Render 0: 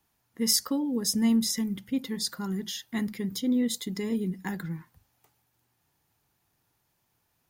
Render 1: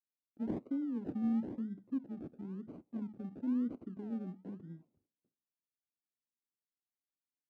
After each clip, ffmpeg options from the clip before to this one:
ffmpeg -i in.wav -af "agate=range=-33dB:threshold=-58dB:ratio=3:detection=peak,acrusher=samples=35:mix=1:aa=0.000001:lfo=1:lforange=21:lforate=1,bandpass=frequency=270:width_type=q:width=2.1:csg=0,volume=-7dB" out.wav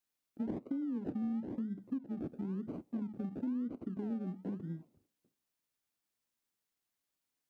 ffmpeg -i in.wav -af "acompressor=threshold=-43dB:ratio=6,volume=8dB" out.wav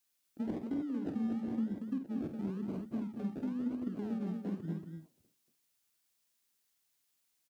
ffmpeg -i in.wav -filter_complex "[0:a]highshelf=frequency=2100:gain=9,asplit=2[link_01][link_02];[link_02]aecho=0:1:49.56|233.2:0.398|0.562[link_03];[link_01][link_03]amix=inputs=2:normalize=0" out.wav

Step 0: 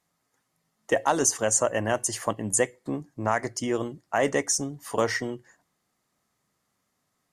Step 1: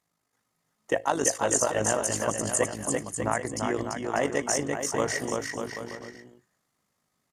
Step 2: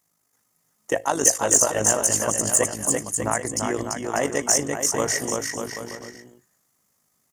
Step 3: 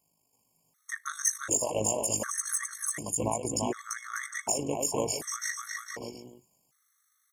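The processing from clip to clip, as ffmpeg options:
ffmpeg -i in.wav -filter_complex "[0:a]tremolo=f=51:d=0.667,asplit=2[link_01][link_02];[link_02]aecho=0:1:340|595|786.2|929.7|1037:0.631|0.398|0.251|0.158|0.1[link_03];[link_01][link_03]amix=inputs=2:normalize=0" out.wav
ffmpeg -i in.wav -af "aexciter=amount=1.6:drive=8.9:freq=5500,volume=2.5dB" out.wav
ffmpeg -i in.wav -af "acompressor=threshold=-26dB:ratio=2.5,afftfilt=real='re*gt(sin(2*PI*0.67*pts/sr)*(1-2*mod(floor(b*sr/1024/1100),2)),0)':imag='im*gt(sin(2*PI*0.67*pts/sr)*(1-2*mod(floor(b*sr/1024/1100),2)),0)':win_size=1024:overlap=0.75" out.wav

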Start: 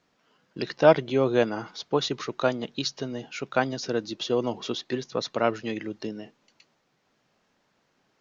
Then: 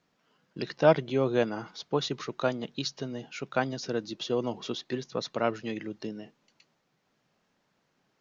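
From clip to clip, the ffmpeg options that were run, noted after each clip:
ffmpeg -i in.wav -af "equalizer=frequency=160:width_type=o:width=0.74:gain=4,volume=-4dB" out.wav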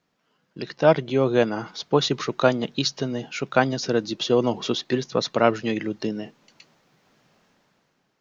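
ffmpeg -i in.wav -af "dynaudnorm=framelen=190:gausssize=9:maxgain=12dB" out.wav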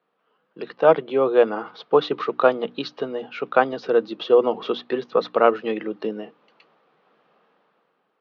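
ffmpeg -i in.wav -af "highpass=frequency=190:width=0.5412,highpass=frequency=190:width=1.3066,equalizer=frequency=250:width_type=q:width=4:gain=-4,equalizer=frequency=470:width_type=q:width=4:gain=8,equalizer=frequency=780:width_type=q:width=4:gain=4,equalizer=frequency=1200:width_type=q:width=4:gain=8,equalizer=frequency=2100:width_type=q:width=4:gain=-3,lowpass=frequency=3400:width=0.5412,lowpass=frequency=3400:width=1.3066,bandreject=frequency=60:width_type=h:width=6,bandreject=frequency=120:width_type=h:width=6,bandreject=frequency=180:width_type=h:width=6,bandreject=frequency=240:width_type=h:width=6,bandreject=frequency=300:width_type=h:width=6,volume=-1.5dB" out.wav

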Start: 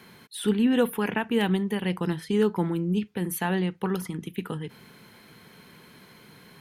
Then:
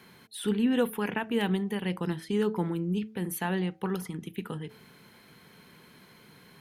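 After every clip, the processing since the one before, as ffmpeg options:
ffmpeg -i in.wav -af "bandreject=frequency=108.9:width_type=h:width=4,bandreject=frequency=217.8:width_type=h:width=4,bandreject=frequency=326.7:width_type=h:width=4,bandreject=frequency=435.6:width_type=h:width=4,bandreject=frequency=544.5:width_type=h:width=4,bandreject=frequency=653.4:width_type=h:width=4,bandreject=frequency=762.3:width_type=h:width=4,volume=-3.5dB" out.wav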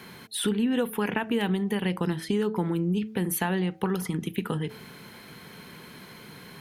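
ffmpeg -i in.wav -af "acompressor=threshold=-33dB:ratio=4,volume=9dB" out.wav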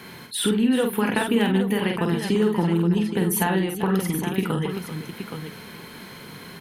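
ffmpeg -i in.wav -af "aecho=1:1:47|388|821:0.596|0.251|0.376,volume=3.5dB" out.wav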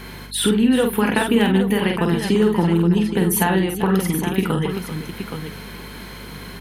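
ffmpeg -i in.wav -af "aeval=exprs='val(0)+0.00708*(sin(2*PI*50*n/s)+sin(2*PI*2*50*n/s)/2+sin(2*PI*3*50*n/s)/3+sin(2*PI*4*50*n/s)/4+sin(2*PI*5*50*n/s)/5)':channel_layout=same,volume=4dB" out.wav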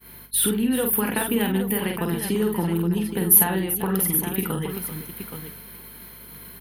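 ffmpeg -i in.wav -af "aexciter=amount=10.8:drive=2.2:freq=10000,agate=range=-33dB:threshold=-25dB:ratio=3:detection=peak,volume=-6.5dB" out.wav

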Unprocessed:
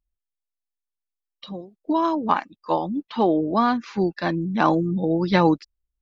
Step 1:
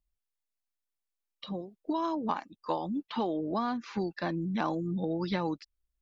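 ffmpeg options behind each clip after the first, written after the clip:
ffmpeg -i in.wav -filter_complex "[0:a]acrossover=split=1200|4000[link_01][link_02][link_03];[link_01]acompressor=threshold=-29dB:ratio=4[link_04];[link_02]acompressor=threshold=-41dB:ratio=4[link_05];[link_03]acompressor=threshold=-52dB:ratio=4[link_06];[link_04][link_05][link_06]amix=inputs=3:normalize=0,volume=-1.5dB" out.wav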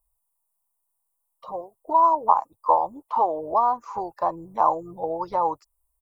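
ffmpeg -i in.wav -af "firequalizer=gain_entry='entry(110,0);entry(190,-21);entry(490,3);entry(1000,13);entry(1600,-15);entry(3700,-22);entry(8800,13)':delay=0.05:min_phase=1,volume=5dB" out.wav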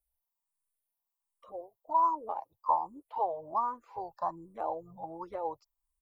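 ffmpeg -i in.wav -filter_complex "[0:a]asplit=2[link_01][link_02];[link_02]afreqshift=1.3[link_03];[link_01][link_03]amix=inputs=2:normalize=1,volume=-7.5dB" out.wav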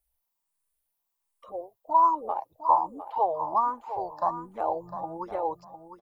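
ffmpeg -i in.wav -af "aecho=1:1:705|1410|2115:0.282|0.0535|0.0102,volume=6dB" out.wav

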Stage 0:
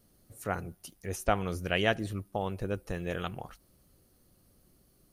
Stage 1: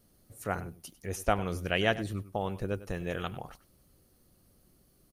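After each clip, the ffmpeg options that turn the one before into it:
ffmpeg -i in.wav -filter_complex "[0:a]asplit=2[link_01][link_02];[link_02]adelay=99.13,volume=-16dB,highshelf=frequency=4000:gain=-2.23[link_03];[link_01][link_03]amix=inputs=2:normalize=0" out.wav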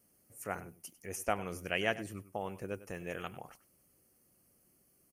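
ffmpeg -i in.wav -af "highpass=frequency=190:poles=1,highshelf=frequency=10000:gain=-3.5,aexciter=amount=1.2:drive=2.4:freq=2000,volume=-5dB" out.wav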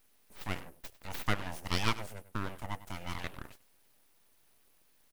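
ffmpeg -i in.wav -filter_complex "[0:a]acrossover=split=210[link_01][link_02];[link_01]acompressor=threshold=-57dB:ratio=6[link_03];[link_03][link_02]amix=inputs=2:normalize=0,aeval=exprs='abs(val(0))':channel_layout=same,volume=4dB" out.wav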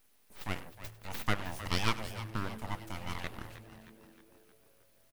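ffmpeg -i in.wav -filter_complex "[0:a]asplit=7[link_01][link_02][link_03][link_04][link_05][link_06][link_07];[link_02]adelay=312,afreqshift=-110,volume=-13dB[link_08];[link_03]adelay=624,afreqshift=-220,volume=-18.2dB[link_09];[link_04]adelay=936,afreqshift=-330,volume=-23.4dB[link_10];[link_05]adelay=1248,afreqshift=-440,volume=-28.6dB[link_11];[link_06]adelay=1560,afreqshift=-550,volume=-33.8dB[link_12];[link_07]adelay=1872,afreqshift=-660,volume=-39dB[link_13];[link_01][link_08][link_09][link_10][link_11][link_12][link_13]amix=inputs=7:normalize=0" out.wav

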